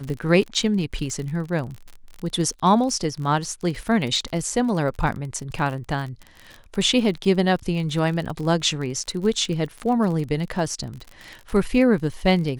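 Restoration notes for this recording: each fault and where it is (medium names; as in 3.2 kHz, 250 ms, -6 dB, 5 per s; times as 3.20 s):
crackle 43 per s -29 dBFS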